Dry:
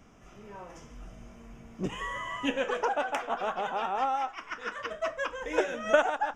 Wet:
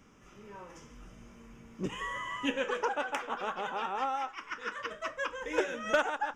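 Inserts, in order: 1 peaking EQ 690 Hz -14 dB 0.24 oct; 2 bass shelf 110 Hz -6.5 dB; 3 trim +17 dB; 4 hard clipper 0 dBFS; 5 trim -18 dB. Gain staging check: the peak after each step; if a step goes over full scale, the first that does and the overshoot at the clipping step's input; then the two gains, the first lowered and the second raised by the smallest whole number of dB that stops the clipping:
-9.5 dBFS, -10.0 dBFS, +7.0 dBFS, 0.0 dBFS, -18.0 dBFS; step 3, 7.0 dB; step 3 +10 dB, step 5 -11 dB

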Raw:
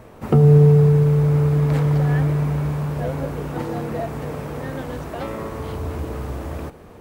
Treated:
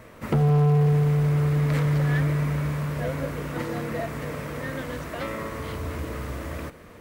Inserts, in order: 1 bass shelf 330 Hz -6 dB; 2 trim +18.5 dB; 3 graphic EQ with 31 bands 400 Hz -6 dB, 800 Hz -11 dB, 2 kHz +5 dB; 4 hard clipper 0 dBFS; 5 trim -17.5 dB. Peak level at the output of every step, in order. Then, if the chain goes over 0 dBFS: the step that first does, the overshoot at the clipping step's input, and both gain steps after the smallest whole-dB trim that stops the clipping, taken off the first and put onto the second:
-9.0 dBFS, +9.5 dBFS, +9.0 dBFS, 0.0 dBFS, -17.5 dBFS; step 2, 9.0 dB; step 2 +9.5 dB, step 5 -8.5 dB

